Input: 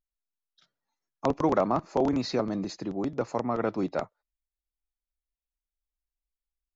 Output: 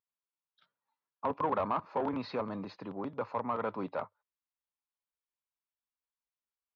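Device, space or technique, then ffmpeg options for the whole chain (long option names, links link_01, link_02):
overdrive pedal into a guitar cabinet: -filter_complex "[0:a]asplit=2[link_01][link_02];[link_02]highpass=frequency=720:poles=1,volume=15dB,asoftclip=type=tanh:threshold=-12dB[link_03];[link_01][link_03]amix=inputs=2:normalize=0,lowpass=frequency=1600:poles=1,volume=-6dB,highpass=82,equalizer=frequency=100:width_type=q:width=4:gain=7,equalizer=frequency=340:width_type=q:width=4:gain=-9,equalizer=frequency=690:width_type=q:width=4:gain=-6,equalizer=frequency=1000:width_type=q:width=4:gain=6,equalizer=frequency=1900:width_type=q:width=4:gain=-4,lowpass=frequency=4000:width=0.5412,lowpass=frequency=4000:width=1.3066,volume=-7.5dB"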